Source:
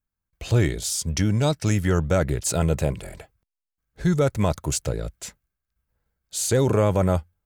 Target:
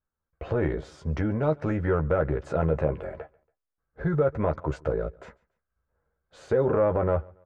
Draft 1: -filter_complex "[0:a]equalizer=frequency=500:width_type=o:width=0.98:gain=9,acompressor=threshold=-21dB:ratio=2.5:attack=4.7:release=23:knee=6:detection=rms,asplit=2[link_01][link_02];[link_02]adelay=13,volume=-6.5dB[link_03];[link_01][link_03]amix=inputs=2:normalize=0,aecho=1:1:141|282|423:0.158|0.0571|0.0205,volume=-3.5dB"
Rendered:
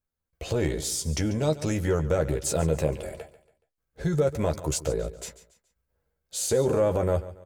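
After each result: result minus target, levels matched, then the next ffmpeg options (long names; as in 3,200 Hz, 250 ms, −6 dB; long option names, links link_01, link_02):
echo-to-direct +9.5 dB; 1,000 Hz band −3.0 dB
-filter_complex "[0:a]equalizer=frequency=500:width_type=o:width=0.98:gain=9,acompressor=threshold=-21dB:ratio=2.5:attack=4.7:release=23:knee=6:detection=rms,asplit=2[link_01][link_02];[link_02]adelay=13,volume=-6.5dB[link_03];[link_01][link_03]amix=inputs=2:normalize=0,aecho=1:1:141|282:0.0531|0.0191,volume=-3.5dB"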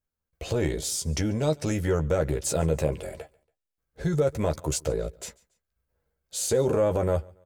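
1,000 Hz band −3.0 dB
-filter_complex "[0:a]lowpass=frequency=1400:width_type=q:width=2,equalizer=frequency=500:width_type=o:width=0.98:gain=9,acompressor=threshold=-21dB:ratio=2.5:attack=4.7:release=23:knee=6:detection=rms,asplit=2[link_01][link_02];[link_02]adelay=13,volume=-6.5dB[link_03];[link_01][link_03]amix=inputs=2:normalize=0,aecho=1:1:141|282:0.0531|0.0191,volume=-3.5dB"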